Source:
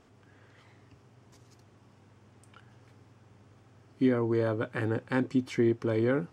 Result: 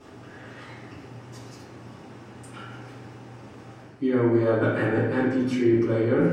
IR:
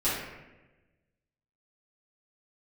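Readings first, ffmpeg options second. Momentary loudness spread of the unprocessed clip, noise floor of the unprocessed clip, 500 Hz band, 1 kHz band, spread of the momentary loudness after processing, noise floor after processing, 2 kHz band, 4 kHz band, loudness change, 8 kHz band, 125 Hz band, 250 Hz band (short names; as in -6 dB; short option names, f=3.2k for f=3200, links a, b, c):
4 LU, -61 dBFS, +6.5 dB, +6.5 dB, 21 LU, -46 dBFS, +6.5 dB, +4.5 dB, +6.0 dB, n/a, +6.0 dB, +6.0 dB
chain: -filter_complex "[0:a]highpass=f=140:p=1,areverse,acompressor=threshold=-36dB:ratio=12,areverse[a];[1:a]atrim=start_sample=2205[b];[a][b]afir=irnorm=-1:irlink=0,volume=6dB"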